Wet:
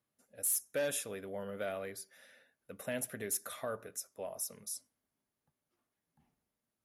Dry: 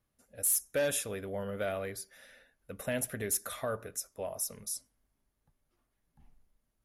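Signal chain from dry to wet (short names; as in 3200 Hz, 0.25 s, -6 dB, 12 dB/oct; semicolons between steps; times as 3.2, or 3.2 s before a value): HPF 140 Hz 12 dB/oct; gain -4 dB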